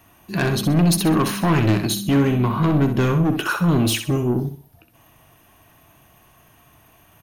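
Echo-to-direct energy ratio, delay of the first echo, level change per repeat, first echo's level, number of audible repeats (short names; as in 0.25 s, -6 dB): -8.0 dB, 64 ms, -10.0 dB, -8.5 dB, 3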